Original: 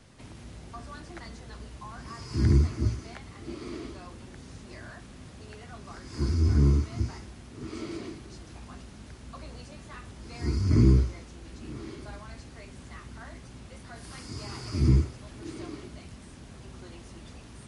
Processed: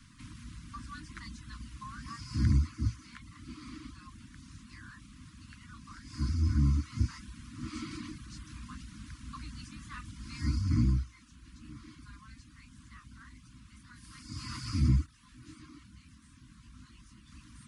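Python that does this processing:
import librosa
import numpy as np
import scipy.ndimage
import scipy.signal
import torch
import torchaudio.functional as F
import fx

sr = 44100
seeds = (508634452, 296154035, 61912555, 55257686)

y = fx.detune_double(x, sr, cents=20, at=(15.06, 17.32))
y = scipy.signal.sosfilt(scipy.signal.cheby1(5, 1.0, [310.0, 1000.0], 'bandstop', fs=sr, output='sos'), y)
y = fx.dereverb_blind(y, sr, rt60_s=0.52)
y = fx.rider(y, sr, range_db=10, speed_s=0.5)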